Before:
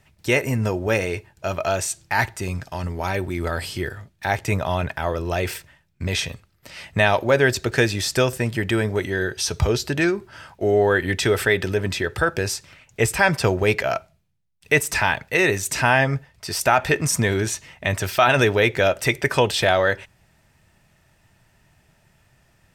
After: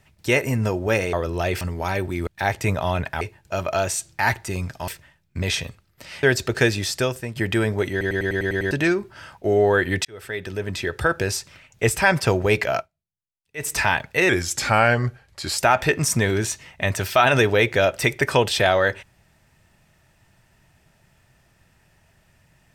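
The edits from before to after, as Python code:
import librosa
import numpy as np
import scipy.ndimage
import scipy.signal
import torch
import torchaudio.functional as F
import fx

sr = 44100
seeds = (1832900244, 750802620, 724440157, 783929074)

y = fx.edit(x, sr, fx.swap(start_s=1.13, length_s=1.67, other_s=5.05, other_length_s=0.48),
    fx.cut(start_s=3.46, length_s=0.65),
    fx.cut(start_s=6.88, length_s=0.52),
    fx.fade_out_to(start_s=7.9, length_s=0.63, floor_db=-10.0),
    fx.stutter_over(start_s=9.08, slice_s=0.1, count=8),
    fx.fade_in_span(start_s=11.22, length_s=1.02),
    fx.fade_down_up(start_s=13.95, length_s=0.89, db=-22.5, fade_s=0.13, curve='qua'),
    fx.speed_span(start_s=15.46, length_s=1.16, speed=0.89), tone=tone)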